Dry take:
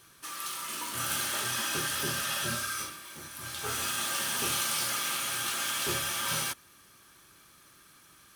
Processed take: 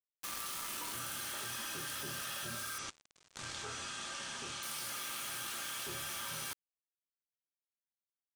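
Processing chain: bit-crush 6-bit; level quantiser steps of 23 dB; 2.78–4.63 steep low-pass 8200 Hz 36 dB/oct; gain +4.5 dB

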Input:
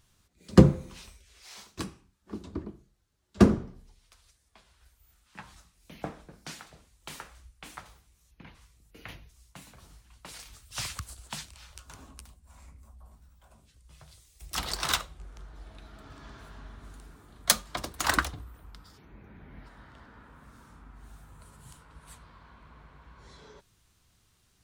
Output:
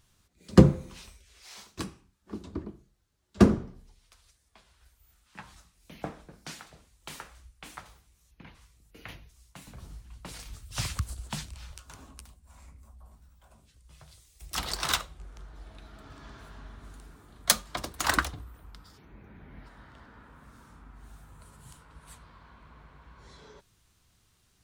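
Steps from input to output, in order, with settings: 9.67–11.75 low shelf 390 Hz +10 dB

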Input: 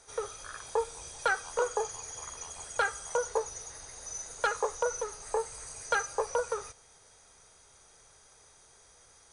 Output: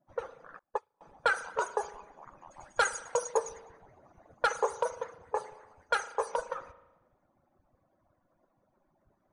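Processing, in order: median-filter separation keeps percussive; 2.44–3.37 dynamic EQ 8000 Hz, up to +8 dB, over -54 dBFS, Q 0.73; low-pass opened by the level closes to 620 Hz, open at -27 dBFS; 5.55–6.28 low shelf 380 Hz -7.5 dB; spring tank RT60 1 s, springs 37 ms, chirp 55 ms, DRR 12.5 dB; 0.59–1.01 upward expander 2.5:1, over -50 dBFS; gain +2 dB

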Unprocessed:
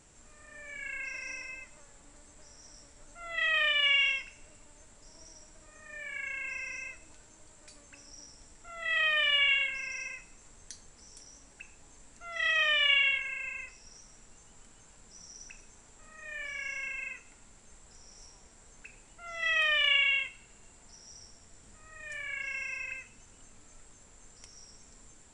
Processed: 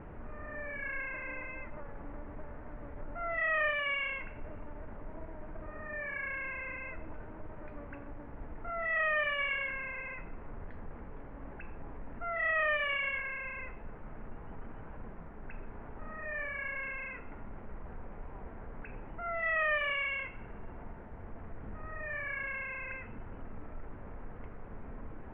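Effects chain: power-law curve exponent 0.7; Bessel low-pass 1200 Hz, order 8; gain +2.5 dB

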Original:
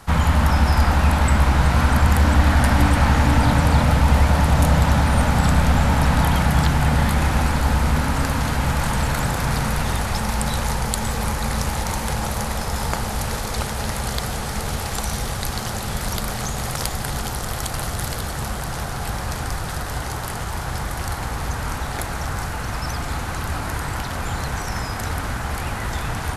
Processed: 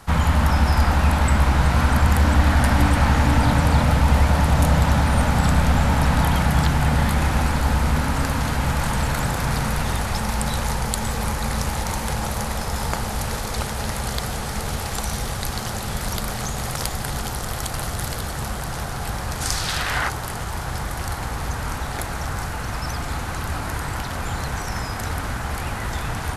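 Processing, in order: 19.4–20.08 bell 8000 Hz -> 1500 Hz +13.5 dB 2.1 oct; gain -1 dB

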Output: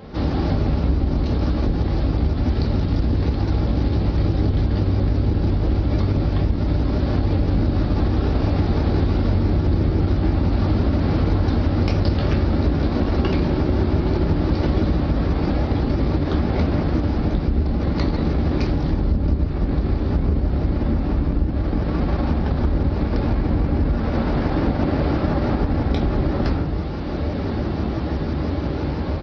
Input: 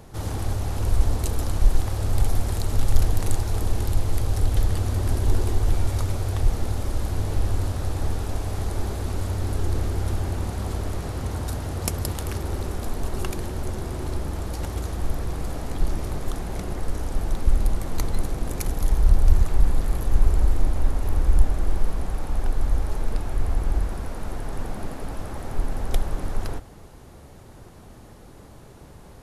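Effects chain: octaver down 1 oct, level +2 dB; steep low-pass 5200 Hz 72 dB/oct; bell 340 Hz +5.5 dB 0.59 oct; on a send: echo 0.142 s -22 dB; on the sum: AGC gain up to 11.5 dB; shoebox room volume 300 m³, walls furnished, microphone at 2.3 m; in parallel at -10.5 dB: overloaded stage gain 1.5 dB; on the sum: HPF 50 Hz 24 dB/oct; compressor 5:1, threshold -18 dBFS, peak gain reduction 14.5 dB; shaped vibrato saw up 6 Hz, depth 100 cents; gain +1.5 dB

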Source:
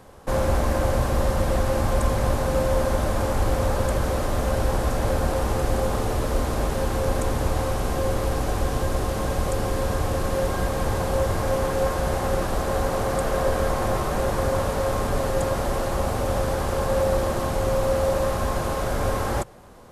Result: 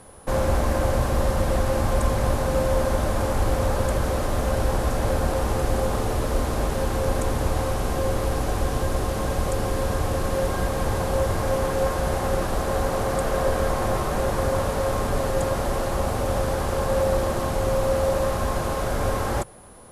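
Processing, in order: whine 10000 Hz -51 dBFS

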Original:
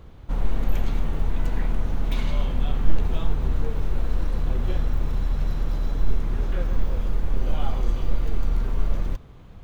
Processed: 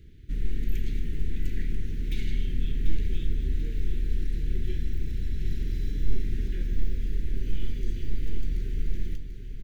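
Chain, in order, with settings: elliptic band-stop 390–1800 Hz, stop band 70 dB; 5.4–6.48 doubler 49 ms -3 dB; feedback echo 0.739 s, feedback 51%, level -9.5 dB; gain -4.5 dB

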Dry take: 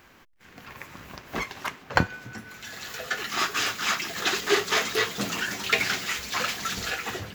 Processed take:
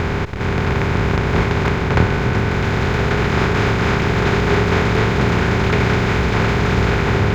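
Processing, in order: per-bin compression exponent 0.2; RIAA curve playback; gain -3 dB

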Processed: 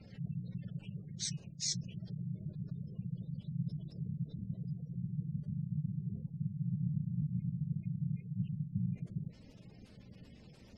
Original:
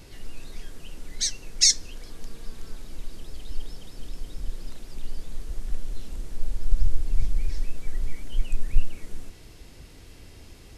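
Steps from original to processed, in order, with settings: phase scrambler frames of 50 ms; reverse; compressor 5:1, threshold -26 dBFS, peak gain reduction 15.5 dB; reverse; ring modulator 150 Hz; spectral gate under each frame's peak -25 dB strong; gain -5.5 dB

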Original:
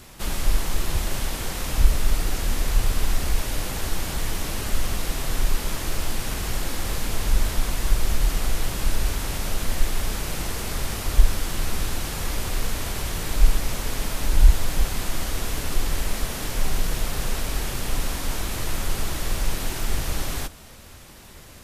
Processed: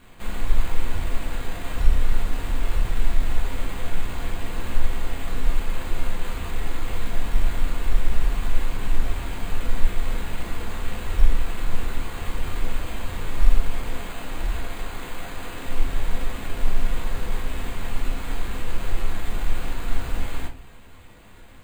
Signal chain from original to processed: 13.94–15.67 low shelf 120 Hz -11.5 dB; sample-and-hold 8×; shoebox room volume 200 m³, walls furnished, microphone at 1.8 m; gain -8.5 dB

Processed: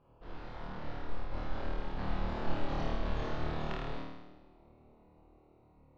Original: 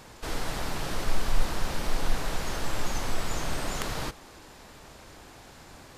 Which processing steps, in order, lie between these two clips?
Wiener smoothing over 25 samples; Doppler pass-by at 2.45, 25 m/s, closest 1.5 m; LPF 3900 Hz 24 dB/oct; reverse; compressor 8:1, threshold -47 dBFS, peak gain reduction 23 dB; reverse; flutter echo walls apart 4.5 m, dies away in 1.1 s; gain +16.5 dB

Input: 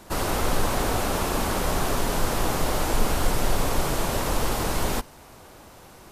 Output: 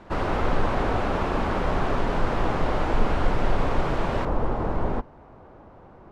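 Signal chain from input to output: LPF 2300 Hz 12 dB/oct, from 4.25 s 1100 Hz; gain +1 dB

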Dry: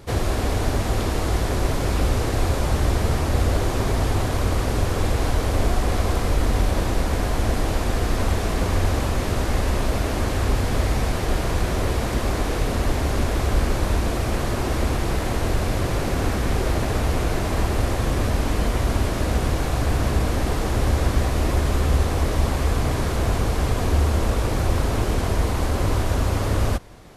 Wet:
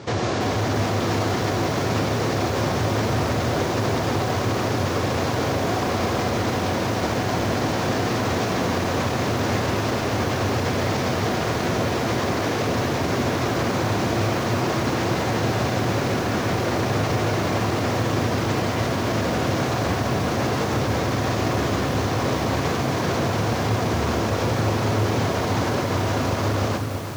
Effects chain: elliptic band-pass 110–6300 Hz; limiter -24 dBFS, peak gain reduction 10.5 dB; on a send at -8 dB: reverb RT60 1.6 s, pre-delay 3 ms; on the sum: lo-fi delay 0.332 s, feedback 80%, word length 7-bit, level -9.5 dB; gain +8 dB

